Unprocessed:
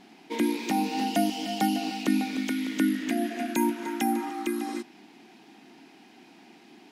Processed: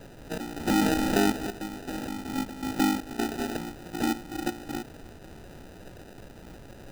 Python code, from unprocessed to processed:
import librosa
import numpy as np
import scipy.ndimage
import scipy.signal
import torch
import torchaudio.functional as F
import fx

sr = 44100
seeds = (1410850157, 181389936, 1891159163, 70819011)

y = fx.step_gate(x, sr, bpm=80, pattern='.x.xx.xx..x', floor_db=-12.0, edge_ms=4.5)
y = fx.dmg_noise_colour(y, sr, seeds[0], colour='pink', level_db=-46.0)
y = fx.sample_hold(y, sr, seeds[1], rate_hz=1100.0, jitter_pct=0)
y = fx.env_flatten(y, sr, amount_pct=70, at=(0.67, 1.32))